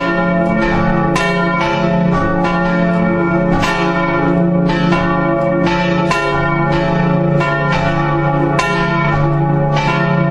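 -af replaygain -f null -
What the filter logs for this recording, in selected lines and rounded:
track_gain = -1.8 dB
track_peak = 0.586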